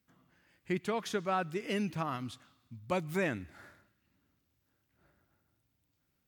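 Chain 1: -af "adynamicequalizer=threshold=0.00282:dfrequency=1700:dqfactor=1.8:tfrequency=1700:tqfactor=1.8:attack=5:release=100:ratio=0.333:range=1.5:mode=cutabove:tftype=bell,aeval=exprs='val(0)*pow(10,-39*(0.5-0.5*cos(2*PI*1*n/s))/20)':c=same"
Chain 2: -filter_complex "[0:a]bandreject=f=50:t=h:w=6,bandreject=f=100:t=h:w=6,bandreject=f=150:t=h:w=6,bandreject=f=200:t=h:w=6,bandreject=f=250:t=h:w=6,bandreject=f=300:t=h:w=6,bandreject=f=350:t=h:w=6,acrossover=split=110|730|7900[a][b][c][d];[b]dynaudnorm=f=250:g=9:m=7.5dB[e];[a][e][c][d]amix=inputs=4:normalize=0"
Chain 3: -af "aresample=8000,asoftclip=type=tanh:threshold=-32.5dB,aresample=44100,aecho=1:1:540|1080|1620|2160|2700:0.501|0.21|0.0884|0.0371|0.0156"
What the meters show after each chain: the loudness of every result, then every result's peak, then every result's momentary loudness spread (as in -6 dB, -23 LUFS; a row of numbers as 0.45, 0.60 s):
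-40.5, -31.0, -39.5 LUFS; -22.5, -14.5, -28.0 dBFS; 16, 17, 16 LU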